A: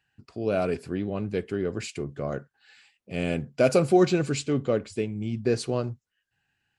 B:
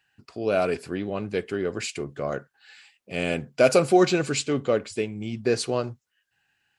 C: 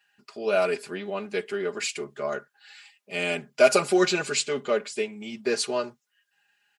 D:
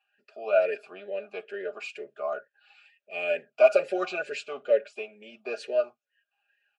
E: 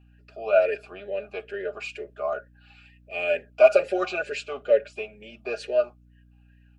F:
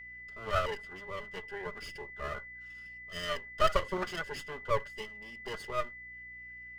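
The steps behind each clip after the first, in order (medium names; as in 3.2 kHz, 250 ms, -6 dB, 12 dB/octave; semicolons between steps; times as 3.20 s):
bass shelf 330 Hz -10 dB; trim +5.5 dB
high-pass 620 Hz 6 dB/octave; comb 4.9 ms, depth 88%
talking filter a-e 2.2 Hz; trim +6.5 dB
hum 60 Hz, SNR 29 dB; trim +3 dB
comb filter that takes the minimum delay 0.62 ms; whistle 2 kHz -38 dBFS; trim -7 dB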